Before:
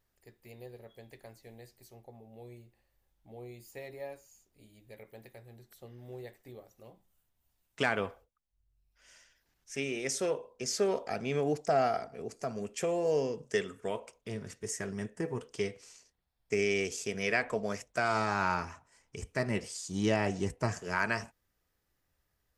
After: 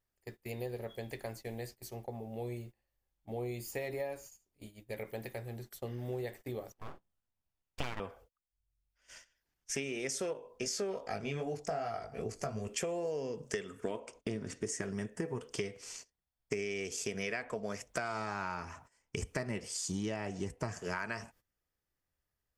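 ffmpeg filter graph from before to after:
-filter_complex "[0:a]asettb=1/sr,asplit=3[a][b][c];[a]atrim=end=6.724[d];[b]atrim=start=6.72:end=8,asetpts=PTS-STARTPTS,afade=t=in:d=0.004:c=qsin,afade=t=out:st=1.276:d=0.004:c=qsin,lowpass=f=2.7k:p=1,aeval=exprs='abs(val(0))':c=same[e];[c]atrim=start=7.996[f];[d][e]acrossfade=d=0.004:c1=hsin:c2=qsin[g];[g][f]acrossfade=d=0.004:c1=qsin:c2=hsin,asettb=1/sr,asplit=3[h][i][j];[h]atrim=end=10.334[k];[i]atrim=start=10.33:end=12.68,asetpts=PTS-STARTPTS,afade=t=in:d=0.004:c=qsin,afade=t=out:st=2.346:d=0.004:c=qsin,asubboost=boost=6:cutoff=110,flanger=delay=18:depth=2.8:speed=2.6[l];[j]atrim=start=12.676[m];[k][l]acrossfade=d=0.004:c1=hsin:c2=qsin[n];[n][m]acrossfade=d=0.004:c1=qsin:c2=hsin,asettb=1/sr,asplit=3[o][p][q];[o]atrim=end=13.844[r];[p]atrim=start=13.84:end=14.82,asetpts=PTS-STARTPTS,afade=t=in:d=0.004:c=qsin,afade=t=out:st=0.976:d=0.004:c=qsin,lowpass=f=9.8k:w=0.5412,lowpass=f=9.8k:w=1.3066,equalizer=f=290:w=2:g=9,asoftclip=type=hard:threshold=-22.5dB[s];[q]atrim=start=14.816[t];[r][s]acrossfade=d=0.004:c1=hsin:c2=qsin[u];[u][t]acrossfade=d=0.004:c1=qsin:c2=hsin,bandreject=f=3.9k:w=18,agate=range=-19dB:threshold=-58dB:ratio=16:detection=peak,acompressor=threshold=-44dB:ratio=10,volume=10dB"

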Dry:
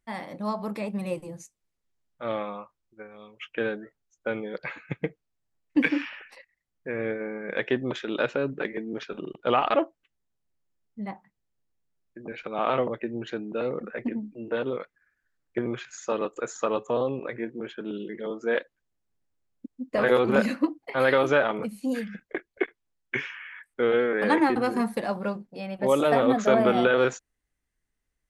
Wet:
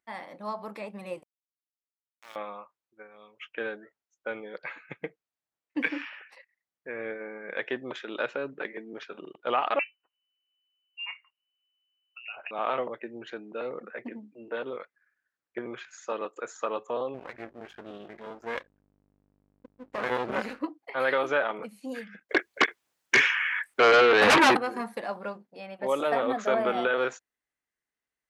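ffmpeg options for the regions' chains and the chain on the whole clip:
-filter_complex "[0:a]asettb=1/sr,asplit=3[a][b][c];[a]atrim=end=1.234[d];[b]atrim=start=1.23:end=2.36,asetpts=PTS-STARTPTS,afade=t=in:d=0.004:c=qsin,afade=t=out:st=1.126:d=0.004:c=qsin,bandpass=f=2.8k:t=q:w=1.5,aeval=exprs='val(0)*gte(abs(val(0)),0.0119)':c=same[e];[c]atrim=start=2.356[f];[d][e]acrossfade=d=0.004:c1=hsin:c2=qsin[g];[g][f]acrossfade=d=0.004:c1=qsin:c2=hsin,asettb=1/sr,asplit=3[h][i][j];[h]atrim=end=9.794[k];[i]atrim=start=9.79:end=12.51,asetpts=PTS-STARTPTS,afade=t=in:d=0.004:c=qsin,afade=t=out:st=2.716:d=0.004:c=qsin,aeval=exprs='clip(val(0),-1,0.075)':c=same,lowpass=f=2.6k:t=q:w=0.5098,lowpass=f=2.6k:t=q:w=0.6013,lowpass=f=2.6k:t=q:w=0.9,lowpass=f=2.6k:t=q:w=2.563,afreqshift=-3000[l];[j]atrim=start=12.506[m];[k][l]acrossfade=d=0.004:c1=hsin:c2=qsin[n];[n][m]acrossfade=d=0.004:c1=qsin:c2=hsin,asettb=1/sr,asplit=3[o][p][q];[o]atrim=end=17.144[r];[p]atrim=start=17.14:end=20.61,asetpts=PTS-STARTPTS,afade=t=in:d=0.004:c=qsin,afade=t=out:st=3.466:d=0.004:c=qsin,aeval=exprs='val(0)+0.00224*(sin(2*PI*50*n/s)+sin(2*PI*2*50*n/s)/2+sin(2*PI*3*50*n/s)/3+sin(2*PI*4*50*n/s)/4+sin(2*PI*5*50*n/s)/5)':c=same,bass=f=250:g=7,treble=f=4k:g=0,aeval=exprs='max(val(0),0)':c=same[s];[q]atrim=start=20.606[t];[r][s]acrossfade=d=0.004:c1=hsin:c2=qsin[u];[u][t]acrossfade=d=0.004:c1=qsin:c2=hsin,asettb=1/sr,asplit=3[v][w][x];[v]atrim=end=22.294[y];[w]atrim=start=22.29:end=24.57,asetpts=PTS-STARTPTS,afade=t=in:d=0.004:c=qsin,afade=t=out:st=2.276:d=0.004:c=qsin,highshelf=f=4.9k:g=6,aeval=exprs='0.316*sin(PI/2*3.98*val(0)/0.316)':c=same[z];[x]atrim=start=24.566[aa];[y][z]acrossfade=d=0.004:c1=hsin:c2=qsin[ab];[ab][aa]acrossfade=d=0.004:c1=qsin:c2=hsin,highpass=f=780:p=1,highshelf=f=3.4k:g=-8.5"

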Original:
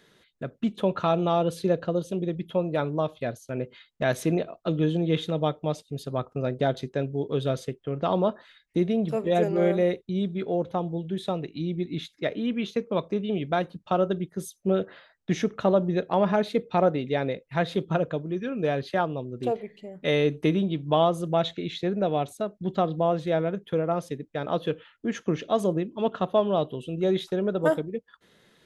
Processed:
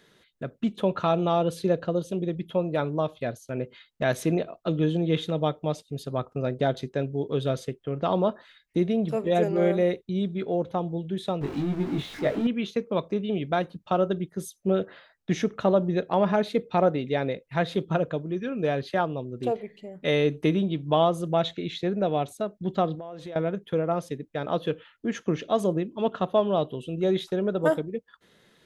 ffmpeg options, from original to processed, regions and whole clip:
-filter_complex "[0:a]asettb=1/sr,asplit=3[a][b][c];[a]atrim=end=11.414[d];[b]atrim=start=11.41:end=12.47,asetpts=PTS-STARTPTS,afade=t=in:d=0.004:c=qsin,afade=t=out:st=1.056:d=0.004:c=qsin,aeval=exprs='val(0)+0.5*0.0282*sgn(val(0))':c=same,lowpass=f=1.5k:p=1,asplit=2[e][f];[f]adelay=21,volume=-3dB[g];[e][g]amix=inputs=2:normalize=0,atrim=end_sample=46746[h];[c]atrim=start=12.466[i];[d][h]acrossfade=d=0.004:c1=hsin:c2=qsin[j];[j][i]acrossfade=d=0.004:c1=qsin:c2=hsin,asettb=1/sr,asplit=3[k][l][m];[k]atrim=end=22.954[n];[l]atrim=start=22.95:end=23.36,asetpts=PTS-STARTPTS,afade=t=in:d=0.004:c=qsin,afade=t=out:st=0.406:d=0.004:c=qsin,equalizer=f=140:t=o:w=1:g=-6.5,acompressor=threshold=-34dB:ratio=12:attack=3.2:release=140:knee=1:detection=peak[o];[m]atrim=start=23.356[p];[n][o]acrossfade=d=0.004:c1=hsin:c2=qsin[q];[q][p]acrossfade=d=0.004:c1=qsin:c2=hsin"

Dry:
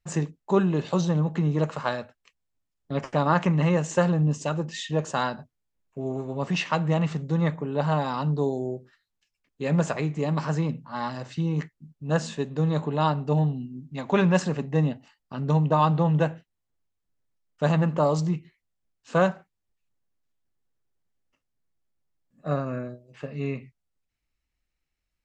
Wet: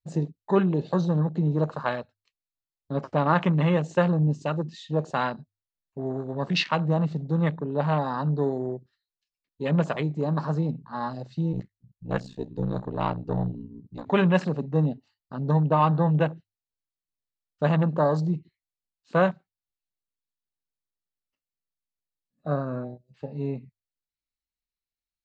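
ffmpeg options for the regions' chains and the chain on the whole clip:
-filter_complex "[0:a]asettb=1/sr,asplit=3[a][b][c];[a]atrim=end=11.524[d];[b]atrim=start=11.52:end=14.07,asetpts=PTS-STARTPTS,afade=t=in:d=0.004:c=qsin,afade=t=out:st=2.546:d=0.004:c=qsin,aeval=exprs='if(lt(val(0),0),0.708*val(0),val(0))':c=same,aeval=exprs='val(0)*sin(2*PI*30*n/s)':c=same[e];[c]atrim=start=14.066[f];[d][e]acrossfade=d=0.004:c1=hsin:c2=qsin[g];[g][f]acrossfade=d=0.004:c1=qsin:c2=hsin,bandreject=f=50:t=h:w=6,bandreject=f=100:t=h:w=6,afwtdn=0.0178,equalizer=f=4.2k:t=o:w=0.62:g=11.5"

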